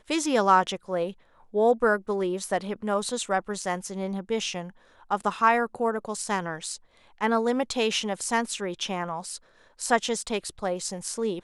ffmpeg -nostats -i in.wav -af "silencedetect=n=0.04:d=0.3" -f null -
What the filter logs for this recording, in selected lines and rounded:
silence_start: 1.09
silence_end: 1.55 | silence_duration: 0.45
silence_start: 4.62
silence_end: 5.11 | silence_duration: 0.49
silence_start: 6.74
silence_end: 7.21 | silence_duration: 0.47
silence_start: 9.36
silence_end: 9.82 | silence_duration: 0.46